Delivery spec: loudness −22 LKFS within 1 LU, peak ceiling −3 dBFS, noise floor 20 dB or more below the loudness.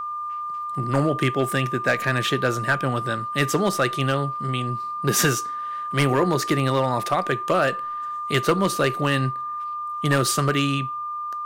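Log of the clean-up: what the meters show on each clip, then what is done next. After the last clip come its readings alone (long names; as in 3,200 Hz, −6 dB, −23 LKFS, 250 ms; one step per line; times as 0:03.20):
share of clipped samples 0.3%; peaks flattened at −11.5 dBFS; interfering tone 1,200 Hz; level of the tone −27 dBFS; integrated loudness −23.0 LKFS; sample peak −11.5 dBFS; target loudness −22.0 LKFS
→ clipped peaks rebuilt −11.5 dBFS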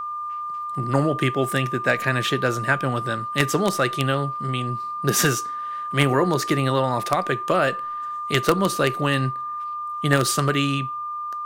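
share of clipped samples 0.0%; interfering tone 1,200 Hz; level of the tone −27 dBFS
→ notch filter 1,200 Hz, Q 30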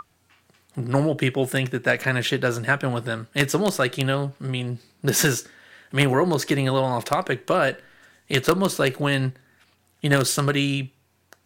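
interfering tone none found; integrated loudness −23.0 LKFS; sample peak −2.0 dBFS; target loudness −22.0 LKFS
→ level +1 dB
brickwall limiter −3 dBFS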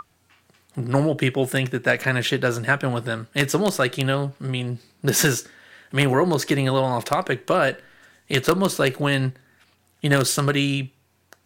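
integrated loudness −22.0 LKFS; sample peak −3.0 dBFS; background noise floor −64 dBFS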